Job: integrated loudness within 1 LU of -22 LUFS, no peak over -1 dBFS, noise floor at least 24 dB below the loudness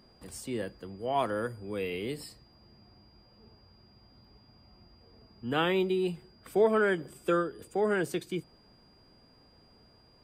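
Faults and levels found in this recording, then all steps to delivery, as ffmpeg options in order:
steady tone 4.8 kHz; tone level -63 dBFS; loudness -31.0 LUFS; peak level -13.5 dBFS; loudness target -22.0 LUFS
-> -af "bandreject=f=4800:w=30"
-af "volume=2.82"

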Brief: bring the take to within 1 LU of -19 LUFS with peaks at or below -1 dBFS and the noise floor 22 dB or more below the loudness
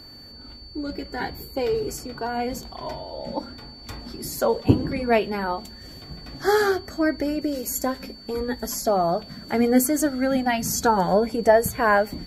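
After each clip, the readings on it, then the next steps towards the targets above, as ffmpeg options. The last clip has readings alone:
steady tone 4.5 kHz; tone level -43 dBFS; loudness -24.0 LUFS; peak level -2.0 dBFS; loudness target -19.0 LUFS
-> -af "bandreject=f=4500:w=30"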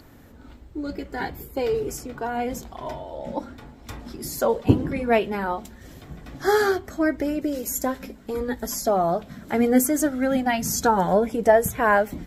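steady tone not found; loudness -24.0 LUFS; peak level -2.0 dBFS; loudness target -19.0 LUFS
-> -af "volume=1.78,alimiter=limit=0.891:level=0:latency=1"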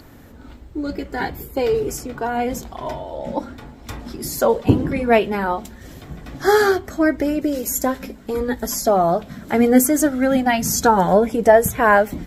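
loudness -19.0 LUFS; peak level -1.0 dBFS; noise floor -43 dBFS

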